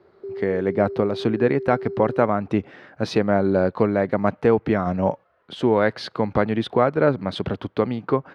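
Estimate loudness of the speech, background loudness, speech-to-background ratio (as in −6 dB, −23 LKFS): −22.0 LKFS, −33.0 LKFS, 11.0 dB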